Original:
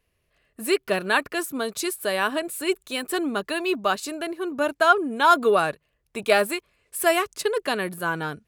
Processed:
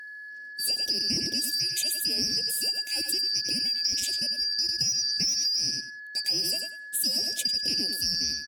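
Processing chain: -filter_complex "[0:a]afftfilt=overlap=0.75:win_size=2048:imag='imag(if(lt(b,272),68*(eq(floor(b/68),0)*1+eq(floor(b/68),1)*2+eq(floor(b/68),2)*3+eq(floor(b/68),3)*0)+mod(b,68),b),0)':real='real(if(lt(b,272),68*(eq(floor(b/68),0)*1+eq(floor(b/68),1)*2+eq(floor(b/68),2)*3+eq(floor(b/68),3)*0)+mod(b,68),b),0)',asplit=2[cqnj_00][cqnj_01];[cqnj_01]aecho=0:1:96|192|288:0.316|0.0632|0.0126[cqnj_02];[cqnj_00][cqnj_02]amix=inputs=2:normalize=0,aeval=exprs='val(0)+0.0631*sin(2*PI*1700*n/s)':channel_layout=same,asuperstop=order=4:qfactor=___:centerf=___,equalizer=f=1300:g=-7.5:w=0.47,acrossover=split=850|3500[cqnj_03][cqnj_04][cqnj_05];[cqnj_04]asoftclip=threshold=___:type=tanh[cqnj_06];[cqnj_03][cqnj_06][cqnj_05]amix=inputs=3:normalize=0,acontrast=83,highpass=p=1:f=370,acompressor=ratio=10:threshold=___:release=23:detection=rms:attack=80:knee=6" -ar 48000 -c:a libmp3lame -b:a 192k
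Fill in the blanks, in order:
0.62, 1200, -31.5dB, -30dB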